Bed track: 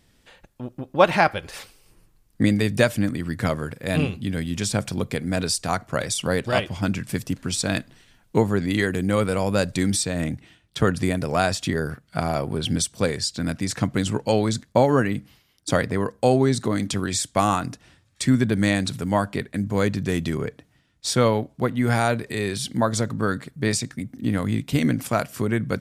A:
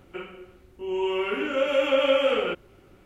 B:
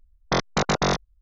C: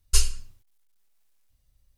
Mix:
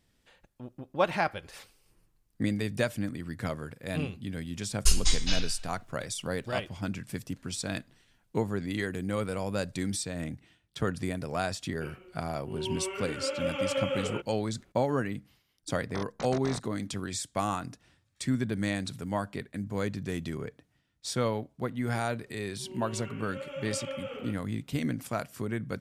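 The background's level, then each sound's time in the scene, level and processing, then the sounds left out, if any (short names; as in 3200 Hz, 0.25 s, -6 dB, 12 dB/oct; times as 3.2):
bed track -10 dB
4.72 add C -3 dB + echoes that change speed 0.153 s, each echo -5 st, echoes 2
11.67 add A -9.5 dB
15.63 add B -17.5 dB
21.79 add A -17 dB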